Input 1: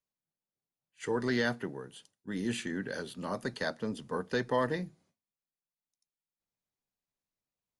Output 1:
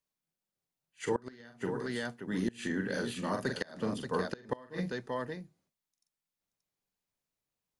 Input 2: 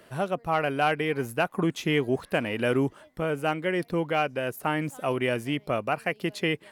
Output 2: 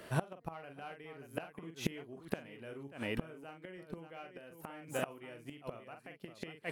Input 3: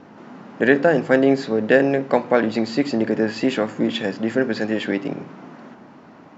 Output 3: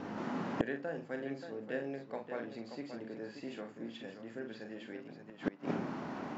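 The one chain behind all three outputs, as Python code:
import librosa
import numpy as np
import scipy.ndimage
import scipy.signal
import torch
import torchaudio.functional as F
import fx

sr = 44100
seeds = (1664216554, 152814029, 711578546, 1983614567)

y = fx.echo_multitap(x, sr, ms=(43, 580), db=(-6.0, -8.5))
y = fx.gate_flip(y, sr, shuts_db=-20.0, range_db=-26)
y = F.gain(torch.from_numpy(y), 1.5).numpy()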